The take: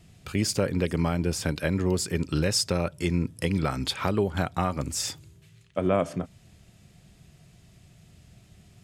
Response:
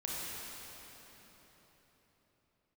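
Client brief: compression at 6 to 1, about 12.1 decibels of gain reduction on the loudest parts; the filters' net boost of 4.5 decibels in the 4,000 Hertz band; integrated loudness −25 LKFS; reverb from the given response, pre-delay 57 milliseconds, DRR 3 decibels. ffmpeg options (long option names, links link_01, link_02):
-filter_complex "[0:a]equalizer=frequency=4000:width_type=o:gain=6,acompressor=threshold=-32dB:ratio=6,asplit=2[link_01][link_02];[1:a]atrim=start_sample=2205,adelay=57[link_03];[link_02][link_03]afir=irnorm=-1:irlink=0,volume=-6.5dB[link_04];[link_01][link_04]amix=inputs=2:normalize=0,volume=10dB"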